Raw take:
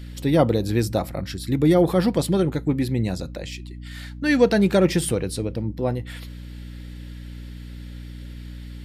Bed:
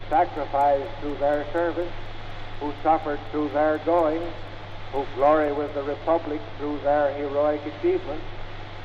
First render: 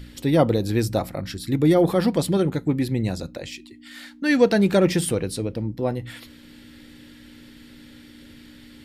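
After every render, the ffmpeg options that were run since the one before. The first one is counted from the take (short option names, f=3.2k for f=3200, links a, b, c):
-af "bandreject=f=60:t=h:w=4,bandreject=f=120:t=h:w=4,bandreject=f=180:t=h:w=4"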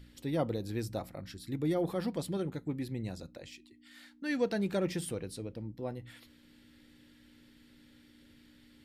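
-af "volume=-14dB"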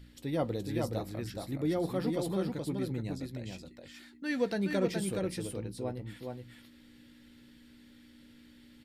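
-filter_complex "[0:a]asplit=2[a][b];[b]adelay=16,volume=-14dB[c];[a][c]amix=inputs=2:normalize=0,aecho=1:1:421:0.631"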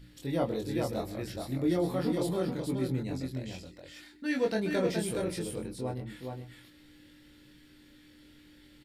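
-filter_complex "[0:a]asplit=2[a][b];[b]adelay=23,volume=-2dB[c];[a][c]amix=inputs=2:normalize=0,aecho=1:1:127:0.133"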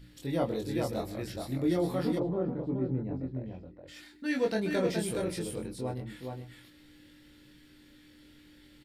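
-filter_complex "[0:a]asplit=3[a][b][c];[a]afade=t=out:st=2.18:d=0.02[d];[b]lowpass=1k,afade=t=in:st=2.18:d=0.02,afade=t=out:st=3.87:d=0.02[e];[c]afade=t=in:st=3.87:d=0.02[f];[d][e][f]amix=inputs=3:normalize=0"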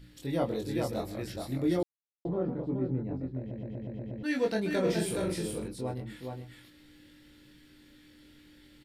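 -filter_complex "[0:a]asettb=1/sr,asplit=3[a][b][c];[a]atrim=end=4.834[d];[b]atrim=start=4.83:end=5.68,asetpts=PTS-STARTPTS,afade=t=in:d=0.004:c=qsin,afade=t=out:st=0.846:d=0.004:c=qsin,asplit=2[e][f];[f]adelay=42,volume=-4.5dB[g];[e][g]amix=inputs=2:normalize=0,atrim=end_sample=37485[h];[c]atrim=start=5.676[i];[d][h]acrossfade=d=0.004:c1=hsin:c2=qsin[j];[j][i]acrossfade=d=0.004:c1=qsin:c2=hsin,asplit=10[k][l][m][n][o][p][q][r][s][t];[k]atrim=end=1.83,asetpts=PTS-STARTPTS,afade=t=out:st=1.826:d=0.004:c=hsin[u];[l]atrim=start=1.83:end=2.25,asetpts=PTS-STARTPTS,volume=0[v];[m]atrim=start=2.25:end=3.512,asetpts=PTS-STARTPTS,afade=t=in:d=0.004:c=hsin[w];[n]atrim=start=3.388:end=3.512[x];[o]atrim=start=3.388:end=3.512[y];[p]atrim=start=3.388:end=3.512[z];[q]atrim=start=3.388:end=3.512[aa];[r]atrim=start=3.388:end=3.512[ab];[s]atrim=start=3.388:end=3.512[ac];[t]atrim=start=4.228[ad];[u][v][w]concat=n=3:v=0:a=1[ae];[ae][x]acrossfade=d=0.004:c1=hsin:c2=hsin[af];[af][y]acrossfade=d=0.004:c1=hsin:c2=hsin[ag];[ag][z]acrossfade=d=0.004:c1=hsin:c2=hsin[ah];[ah][aa]acrossfade=d=0.004:c1=hsin:c2=hsin[ai];[ai][ab]acrossfade=d=0.004:c1=hsin:c2=hsin[aj];[aj][ac]acrossfade=d=0.004:c1=hsin:c2=hsin[ak];[ak][ad]acrossfade=d=0.004:c1=hsin:c2=hsin"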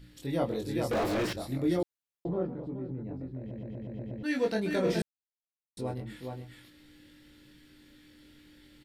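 -filter_complex "[0:a]asettb=1/sr,asplit=3[a][b][c];[a]atrim=end=0.914[d];[b]atrim=start=0.91:end=1.33,asetpts=PTS-STARTPTS,afade=t=in:d=0.004:c=qsin,afade=t=out:st=0.416:d=0.004:c=qsin,asplit=2[e][f];[f]highpass=f=720:p=1,volume=39dB,asoftclip=type=tanh:threshold=-21.5dB[g];[e][g]amix=inputs=2:normalize=0,lowpass=f=1.5k:p=1,volume=-6dB[h];[c]atrim=start=1.326[i];[d][h]acrossfade=d=0.004:c1=hsin:c2=qsin[j];[j][i]acrossfade=d=0.004:c1=qsin:c2=hsin,asettb=1/sr,asplit=3[k][l][m];[k]atrim=end=2.464[n];[l]atrim=start=2.46:end=3.91,asetpts=PTS-STARTPTS,afade=t=in:d=0.004:c=qsin,afade=t=out:st=1.446:d=0.004:c=qsin,acompressor=threshold=-36dB:ratio=2.5:attack=3.2:release=140:knee=1:detection=peak[o];[m]atrim=start=3.906[p];[n][o]acrossfade=d=0.004:c1=hsin:c2=qsin[q];[q][p]acrossfade=d=0.004:c1=qsin:c2=hsin,asplit=3[r][s][t];[r]atrim=end=5.02,asetpts=PTS-STARTPTS,afade=t=out:st=5.016:d=0.004:c=hsin[u];[s]atrim=start=5.02:end=5.77,asetpts=PTS-STARTPTS,volume=0[v];[t]atrim=start=5.77,asetpts=PTS-STARTPTS,afade=t=in:d=0.004:c=hsin[w];[u][v][w]concat=n=3:v=0:a=1"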